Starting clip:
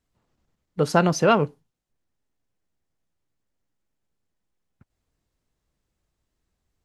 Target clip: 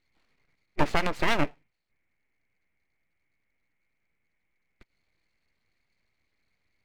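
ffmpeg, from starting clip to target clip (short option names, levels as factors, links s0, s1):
-filter_complex "[0:a]asettb=1/sr,asplit=3[s0][s1][s2];[s0]atrim=end=0.844[s3];[s1]atrim=start=0.84:end=1.39,asetpts=PTS-STARTPTS,afade=t=in:d=0.004:c=qsin,afade=t=out:st=0.546:d=0.004:c=qsin,acompressor=threshold=0.0891:ratio=6[s4];[s2]atrim=start=1.386[s5];[s3][s4]acrossfade=d=0.004:c1=hsin:c2=qsin[s6];[s6][s5]acrossfade=d=0.004:c1=qsin:c2=hsin,lowpass=f=2200:t=q:w=14,aeval=exprs='abs(val(0))':c=same"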